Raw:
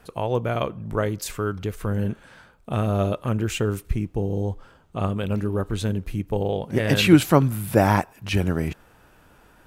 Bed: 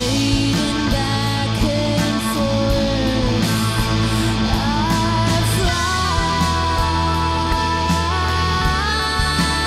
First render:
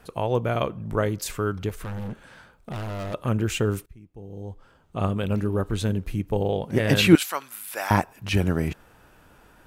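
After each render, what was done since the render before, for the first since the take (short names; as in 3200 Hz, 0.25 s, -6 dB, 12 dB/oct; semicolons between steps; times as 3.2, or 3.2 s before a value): 1.69–3.14 overloaded stage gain 30 dB; 3.86–5.04 fade in quadratic, from -23.5 dB; 7.15–7.91 Bessel high-pass 1600 Hz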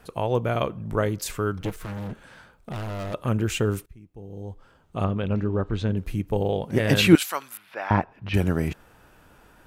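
1.61–2.11 minimum comb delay 6.4 ms; 5.04–5.97 air absorption 160 m; 7.57–8.34 air absorption 310 m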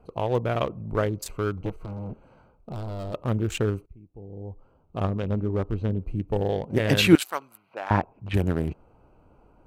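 Wiener smoothing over 25 samples; bell 180 Hz -2.5 dB 1.2 oct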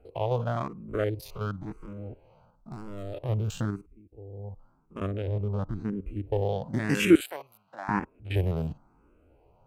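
stepped spectrum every 50 ms; endless phaser +0.97 Hz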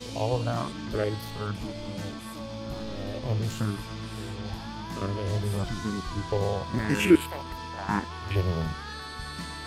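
add bed -19.5 dB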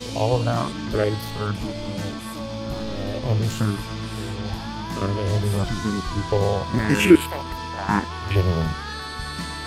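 gain +6.5 dB; limiter -2 dBFS, peak gain reduction 1.5 dB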